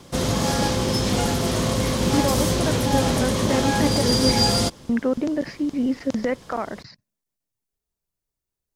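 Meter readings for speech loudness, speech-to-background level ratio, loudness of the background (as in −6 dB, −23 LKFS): −26.0 LKFS, −4.5 dB, −21.5 LKFS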